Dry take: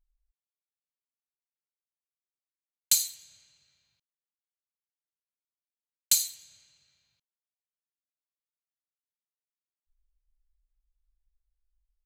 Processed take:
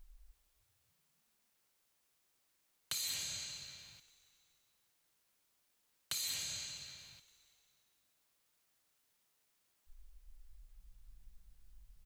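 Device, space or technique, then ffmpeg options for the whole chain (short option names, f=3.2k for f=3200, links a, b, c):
de-esser from a sidechain: -filter_complex "[0:a]asplit=2[a][b];[b]highpass=5.7k,apad=whole_len=531781[c];[a][c]sidechaincompress=threshold=-44dB:ratio=6:attack=2.5:release=62,acrossover=split=3200[d][e];[e]acompressor=threshold=-58dB:ratio=4:attack=1:release=60[f];[d][f]amix=inputs=2:normalize=0,asplit=5[g][h][i][j][k];[h]adelay=292,afreqshift=-62,volume=-21dB[l];[i]adelay=584,afreqshift=-124,volume=-26.5dB[m];[j]adelay=876,afreqshift=-186,volume=-32dB[n];[k]adelay=1168,afreqshift=-248,volume=-37.5dB[o];[g][l][m][n][o]amix=inputs=5:normalize=0,volume=18dB"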